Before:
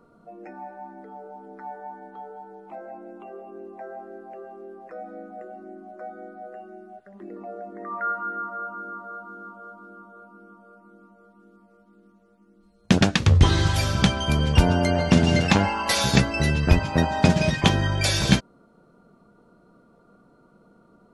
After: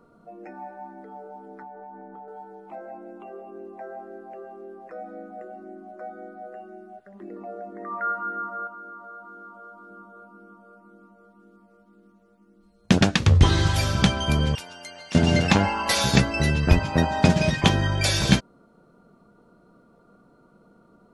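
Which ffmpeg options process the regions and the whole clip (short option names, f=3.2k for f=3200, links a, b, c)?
-filter_complex "[0:a]asettb=1/sr,asplit=3[a][b][c];[a]atrim=end=1.624[d];[b]atrim=start=1.62:end=2.28,asetpts=PTS-STARTPTS,afade=t=in:d=0.004:c=qsin,afade=t=out:st=0.656:d=0.004:c=qsin,lowpass=1.5k,lowshelf=f=340:g=5.5,acompressor=threshold=-38dB:ratio=6:attack=3.2:release=140:knee=1:detection=peak[e];[c]atrim=start=2.276[f];[d][e]acrossfade=d=0.004:c1=hsin:c2=qsin[g];[g][f]acrossfade=d=0.004:c1=qsin:c2=hsin,asettb=1/sr,asplit=3[h][i][j];[h]atrim=end=8.674[k];[i]atrim=start=8.67:end=9.91,asetpts=PTS-STARTPTS,afade=t=in:d=0.004:c=qsin,afade=t=out:st=1.236:d=0.004:c=qsin,acompressor=threshold=-41dB:ratio=2:attack=3.2:release=140:knee=1:detection=peak,equalizer=f=130:t=o:w=1.3:g=-8.5,bandreject=f=2.7k:w=27[l];[j]atrim=start=9.906[m];[k][l]acrossfade=d=0.004:c1=hsin:c2=qsin[n];[n][m]acrossfade=d=0.004:c1=qsin:c2=hsin,asettb=1/sr,asplit=3[o][p][q];[o]atrim=end=14.554[r];[p]atrim=start=14.55:end=15.15,asetpts=PTS-STARTPTS,afade=t=in:d=0.004:c=qsin,afade=t=out:st=0.596:d=0.004:c=qsin,lowpass=f=4k:p=1,aderivative[s];[q]atrim=start=15.146[t];[r][s]acrossfade=d=0.004:c1=hsin:c2=qsin[u];[u][t]acrossfade=d=0.004:c1=qsin:c2=hsin"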